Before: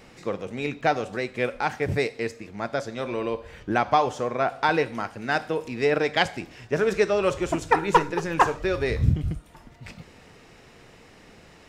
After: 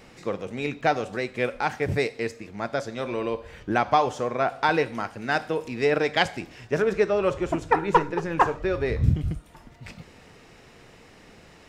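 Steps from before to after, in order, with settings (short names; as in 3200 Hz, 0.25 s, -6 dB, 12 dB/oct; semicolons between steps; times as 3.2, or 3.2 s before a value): 6.82–9.04 high shelf 3200 Hz -10 dB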